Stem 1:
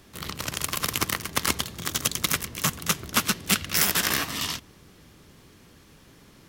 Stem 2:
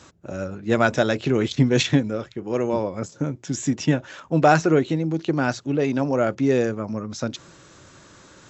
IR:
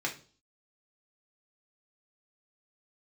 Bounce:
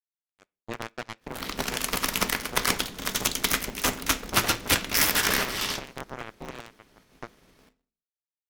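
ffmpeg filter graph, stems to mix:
-filter_complex "[0:a]agate=range=0.0224:threshold=0.00501:ratio=3:detection=peak,adelay=1200,volume=0.708,asplit=2[s0][s1];[s1]volume=0.447[s2];[1:a]acompressor=threshold=0.1:ratio=5,acrusher=bits=2:mix=0:aa=0.5,volume=0.299,asplit=2[s3][s4];[s4]volume=0.0631[s5];[2:a]atrim=start_sample=2205[s6];[s2][s5]amix=inputs=2:normalize=0[s7];[s7][s6]afir=irnorm=-1:irlink=0[s8];[s0][s3][s8]amix=inputs=3:normalize=0,aeval=exprs='val(0)*sgn(sin(2*PI*110*n/s))':c=same"

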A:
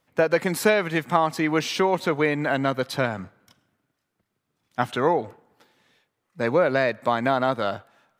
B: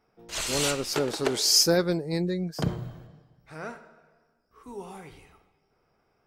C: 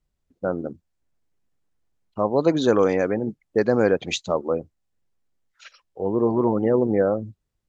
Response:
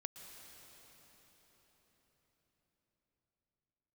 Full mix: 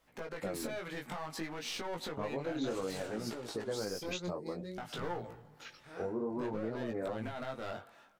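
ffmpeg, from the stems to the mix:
-filter_complex "[0:a]equalizer=f=79:w=0.57:g=-7,acompressor=threshold=0.0355:ratio=3,volume=1.41[s0];[1:a]adelay=2350,volume=0.447[s1];[2:a]acompressor=threshold=0.0316:ratio=2,volume=0.794[s2];[s0][s1]amix=inputs=2:normalize=0,aeval=exprs='clip(val(0),-1,0.0299)':c=same,alimiter=level_in=1.26:limit=0.0631:level=0:latency=1:release=155,volume=0.794,volume=1[s3];[s2][s3]amix=inputs=2:normalize=0,flanger=delay=17:depth=5.4:speed=0.58,alimiter=level_in=1.41:limit=0.0631:level=0:latency=1:release=366,volume=0.708"

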